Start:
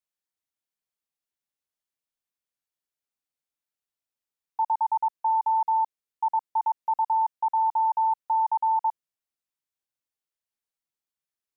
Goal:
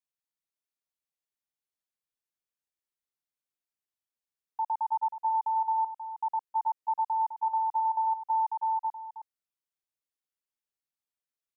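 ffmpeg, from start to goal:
-filter_complex "[0:a]asplit=3[a][b][c];[a]afade=t=out:st=8.47:d=0.02[d];[b]highpass=f=830:p=1,afade=t=in:st=8.47:d=0.02,afade=t=out:st=8.89:d=0.02[e];[c]afade=t=in:st=8.89:d=0.02[f];[d][e][f]amix=inputs=3:normalize=0,asplit=2[g][h];[h]aecho=0:1:316:0.316[i];[g][i]amix=inputs=2:normalize=0,volume=-5.5dB"

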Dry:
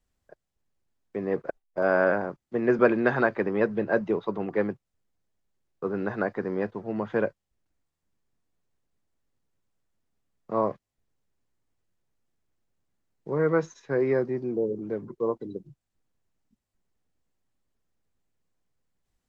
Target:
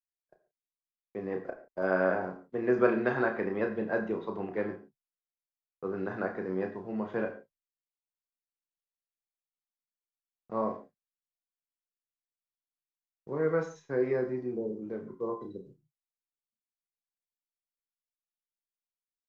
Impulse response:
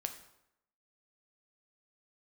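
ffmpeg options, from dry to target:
-filter_complex "[0:a]asplit=2[a][b];[b]adelay=32,volume=-7dB[c];[a][c]amix=inputs=2:normalize=0,agate=range=-33dB:threshold=-43dB:ratio=3:detection=peak[d];[1:a]atrim=start_sample=2205,atrim=end_sample=6615[e];[d][e]afir=irnorm=-1:irlink=0,volume=-5.5dB"

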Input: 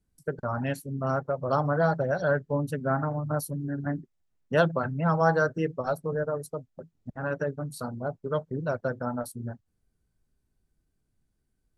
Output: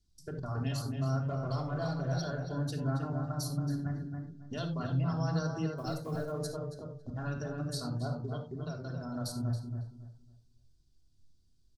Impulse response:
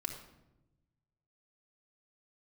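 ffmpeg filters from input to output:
-filter_complex "[0:a]firequalizer=gain_entry='entry(120,0);entry(410,-9);entry(870,-7);entry(2000,-10);entry(3400,6);entry(4900,12);entry(9900,-5)':delay=0.05:min_phase=1,alimiter=level_in=5.5dB:limit=-24dB:level=0:latency=1:release=99,volume=-5.5dB,asettb=1/sr,asplit=3[a][b][c];[a]atrim=end=1.244[d];[b]atrim=start=1.24:end=2.25,asetpts=PTS-STARTPTS,afade=t=in:d=0.004:c=qsin,afade=t=out:st=1.006:d=0.004:c=qsin,aeval=exprs='0.0335*(cos(1*acos(clip(val(0)/0.0335,-1,1)))-cos(1*PI/2))+0.00106*(cos(5*acos(clip(val(0)/0.0335,-1,1)))-cos(5*PI/2))':c=same[e];[c]atrim=start=2.246[f];[d][e]acrossfade=d=0.004:c1=hsin:c2=qsin[g];[g][f]acrossfade=d=0.004:c1=qsin:c2=hsin,asettb=1/sr,asplit=3[h][i][j];[h]atrim=end=5.764[k];[i]atrim=start=5.76:end=6.32,asetpts=PTS-STARTPTS,afade=t=in:d=0.004:c=qsin,afade=t=out:st=0.556:d=0.004:c=qsin,acrusher=bits=7:mode=log:mix=0:aa=0.000001[l];[j]atrim=start=6.316[m];[k][l]acrossfade=d=0.004:c1=hsin:c2=qsin[n];[n][m]acrossfade=d=0.004:c1=qsin:c2=hsin,asettb=1/sr,asplit=3[o][p][q];[o]atrim=end=8.144[r];[p]atrim=start=8.14:end=9.16,asetpts=PTS-STARTPTS,afade=t=in:d=0.004:c=qsin,afade=t=out:st=1.016:d=0.004:c=qsin,acompressor=threshold=-40dB:ratio=3[s];[q]atrim=start=9.156[t];[r][s]acrossfade=d=0.004:c1=hsin:c2=qsin[u];[u][t]acrossfade=d=0.004:c1=qsin:c2=hsin,asplit=2[v][w];[w]adelay=276,lowpass=f=2k:p=1,volume=-4.5dB,asplit=2[x][y];[y]adelay=276,lowpass=f=2k:p=1,volume=0.28,asplit=2[z][aa];[aa]adelay=276,lowpass=f=2k:p=1,volume=0.28,asplit=2[ab][ac];[ac]adelay=276,lowpass=f=2k:p=1,volume=0.28[ad];[v][x][z][ab][ad]amix=inputs=5:normalize=0[ae];[1:a]atrim=start_sample=2205,atrim=end_sample=4410[af];[ae][af]afir=irnorm=-1:irlink=0,volume=2dB"

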